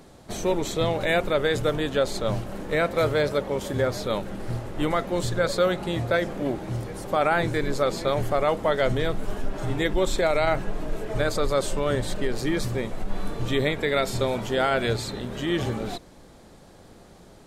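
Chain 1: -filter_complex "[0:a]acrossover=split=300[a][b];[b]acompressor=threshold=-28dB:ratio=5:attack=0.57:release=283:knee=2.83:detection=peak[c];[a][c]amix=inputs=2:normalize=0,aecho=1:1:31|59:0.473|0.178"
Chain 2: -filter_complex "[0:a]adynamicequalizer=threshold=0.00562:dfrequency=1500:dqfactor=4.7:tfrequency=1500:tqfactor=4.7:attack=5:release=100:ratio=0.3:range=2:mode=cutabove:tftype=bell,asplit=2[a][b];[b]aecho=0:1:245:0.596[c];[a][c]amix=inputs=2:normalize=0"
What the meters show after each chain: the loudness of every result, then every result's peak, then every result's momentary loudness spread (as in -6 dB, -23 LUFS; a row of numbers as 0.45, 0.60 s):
-30.0, -24.5 LUFS; -13.0, -9.0 dBFS; 5, 8 LU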